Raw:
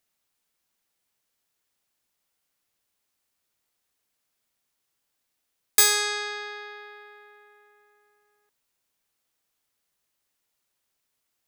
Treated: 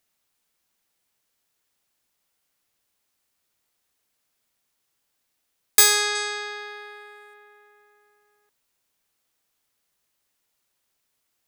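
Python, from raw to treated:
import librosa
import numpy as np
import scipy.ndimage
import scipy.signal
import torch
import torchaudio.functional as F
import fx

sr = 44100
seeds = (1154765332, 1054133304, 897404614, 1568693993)

y = fx.peak_eq(x, sr, hz=8600.0, db=12.5, octaves=0.7, at=(6.15, 7.34))
y = F.gain(torch.from_numpy(y), 3.0).numpy()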